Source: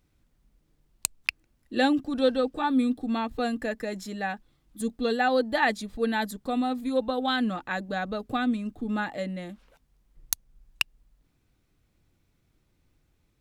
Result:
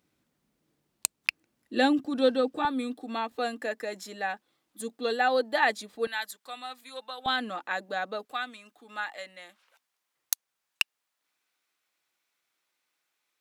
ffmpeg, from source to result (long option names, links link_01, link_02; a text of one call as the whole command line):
ffmpeg -i in.wav -af "asetnsamples=nb_out_samples=441:pad=0,asendcmd='2.65 highpass f 400;6.07 highpass f 1300;7.26 highpass f 440;8.25 highpass f 1000',highpass=190" out.wav